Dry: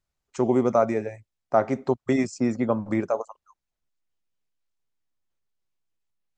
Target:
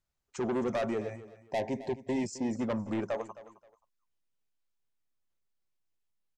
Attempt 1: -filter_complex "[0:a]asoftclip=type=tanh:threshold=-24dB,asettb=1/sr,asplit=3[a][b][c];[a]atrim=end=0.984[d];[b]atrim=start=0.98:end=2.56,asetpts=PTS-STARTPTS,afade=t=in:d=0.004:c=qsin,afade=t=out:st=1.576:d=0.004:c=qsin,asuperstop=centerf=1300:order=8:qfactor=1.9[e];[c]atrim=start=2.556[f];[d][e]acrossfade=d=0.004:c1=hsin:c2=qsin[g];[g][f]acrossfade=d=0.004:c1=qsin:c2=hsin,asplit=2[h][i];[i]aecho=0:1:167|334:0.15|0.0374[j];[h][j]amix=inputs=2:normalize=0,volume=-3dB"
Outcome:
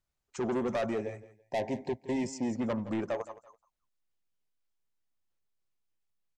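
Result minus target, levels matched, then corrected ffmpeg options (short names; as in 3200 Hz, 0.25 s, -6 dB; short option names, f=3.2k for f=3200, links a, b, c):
echo 97 ms early
-filter_complex "[0:a]asoftclip=type=tanh:threshold=-24dB,asettb=1/sr,asplit=3[a][b][c];[a]atrim=end=0.984[d];[b]atrim=start=0.98:end=2.56,asetpts=PTS-STARTPTS,afade=t=in:d=0.004:c=qsin,afade=t=out:st=1.576:d=0.004:c=qsin,asuperstop=centerf=1300:order=8:qfactor=1.9[e];[c]atrim=start=2.556[f];[d][e]acrossfade=d=0.004:c1=hsin:c2=qsin[g];[g][f]acrossfade=d=0.004:c1=qsin:c2=hsin,asplit=2[h][i];[i]aecho=0:1:264|528:0.15|0.0374[j];[h][j]amix=inputs=2:normalize=0,volume=-3dB"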